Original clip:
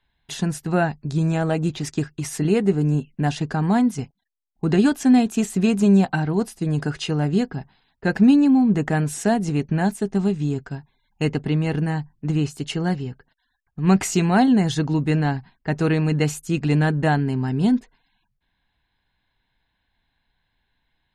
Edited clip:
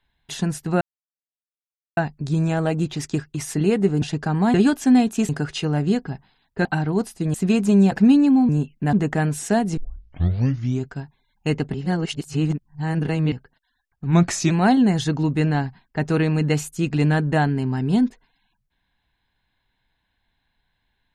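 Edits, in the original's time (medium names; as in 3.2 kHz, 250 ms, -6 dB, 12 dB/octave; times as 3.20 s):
0.81 s: insert silence 1.16 s
2.86–3.30 s: move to 8.68 s
3.82–4.73 s: delete
5.48–6.06 s: swap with 6.75–8.11 s
9.52 s: tape start 1.08 s
11.49–13.07 s: reverse
13.81–14.21 s: speed 90%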